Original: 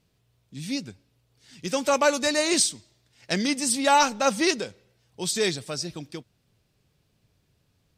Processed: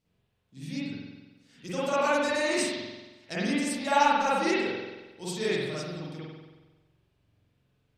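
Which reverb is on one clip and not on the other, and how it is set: spring tank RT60 1.2 s, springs 45 ms, chirp 60 ms, DRR -9.5 dB; trim -12 dB

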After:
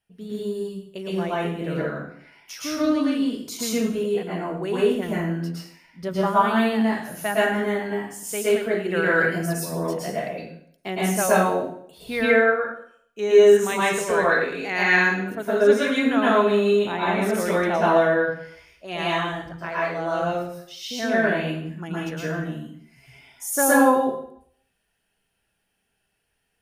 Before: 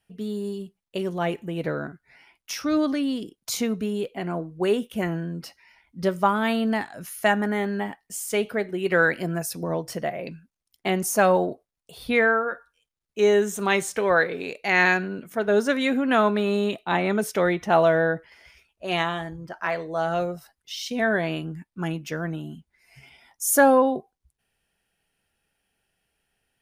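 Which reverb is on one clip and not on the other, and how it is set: plate-style reverb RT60 0.63 s, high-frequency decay 0.9×, pre-delay 100 ms, DRR -7.5 dB; trim -6.5 dB

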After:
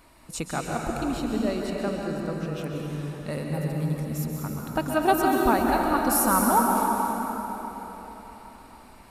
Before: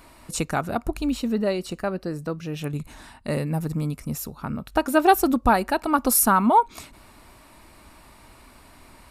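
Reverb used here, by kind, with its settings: plate-style reverb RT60 4.3 s, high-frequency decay 0.65×, pre-delay 115 ms, DRR -1 dB; trim -5.5 dB

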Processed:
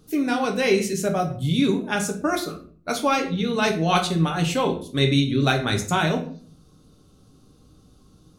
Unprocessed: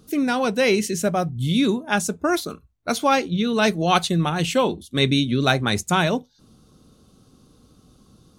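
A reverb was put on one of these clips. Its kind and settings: simulated room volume 43 m³, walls mixed, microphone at 0.47 m; trim -3.5 dB

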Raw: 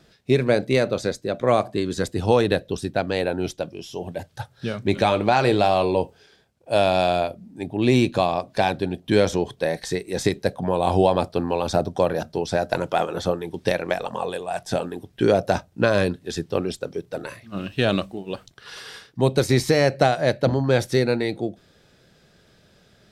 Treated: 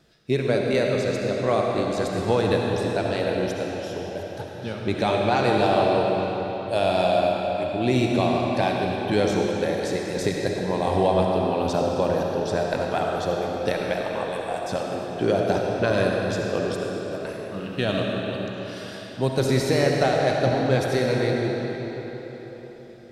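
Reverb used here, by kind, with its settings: algorithmic reverb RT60 4.4 s, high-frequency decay 0.8×, pre-delay 25 ms, DRR -1 dB; trim -4.5 dB

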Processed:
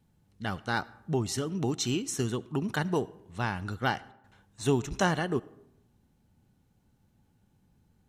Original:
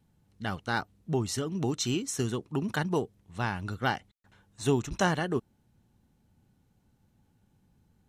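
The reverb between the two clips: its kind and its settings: algorithmic reverb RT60 0.83 s, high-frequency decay 0.55×, pre-delay 35 ms, DRR 20 dB

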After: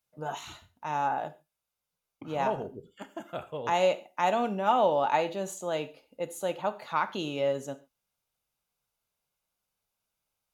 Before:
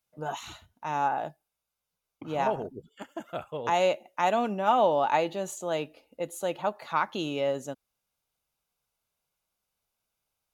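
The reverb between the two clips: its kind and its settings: gated-style reverb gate 160 ms falling, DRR 11 dB; trim -1.5 dB

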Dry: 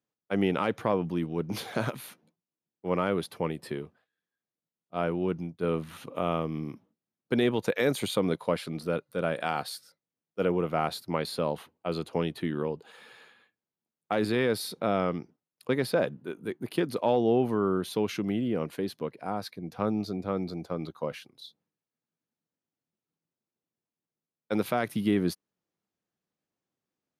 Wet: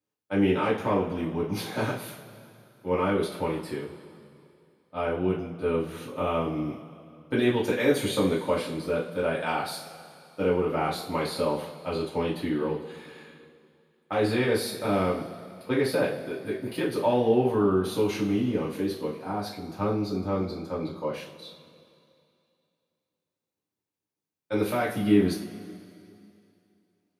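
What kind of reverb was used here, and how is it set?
two-slope reverb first 0.35 s, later 2.6 s, from -18 dB, DRR -8 dB; trim -6 dB

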